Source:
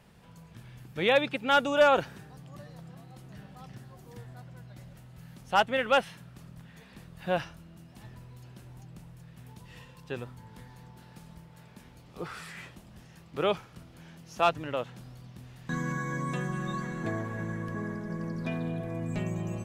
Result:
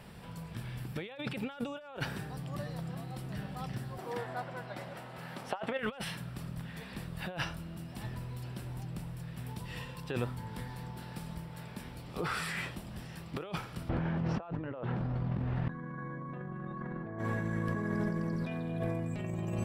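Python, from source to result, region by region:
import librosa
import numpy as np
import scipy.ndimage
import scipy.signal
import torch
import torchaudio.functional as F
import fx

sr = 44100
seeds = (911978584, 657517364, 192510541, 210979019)

y = fx.chain(x, sr, fx.highpass(hz=700.0, slope=12),
    fx.tilt_eq(slope=-4.0),
    fx.over_compress(threshold_db=-35.0, ratio=-0.5), at=(3.98, 5.79))
y = fx.chain(y, sr, fx.lowpass(hz=1400.0, slope=12),
    fx.hum_notches(base_hz=60, count=7),
    fx.env_flatten(amount_pct=50), at=(13.89, 17.19))
y = fx.notch(y, sr, hz=6500.0, q=5.2)
y = fx.over_compress(y, sr, threshold_db=-38.0, ratio=-1.0)
y = y * librosa.db_to_amplitude(1.0)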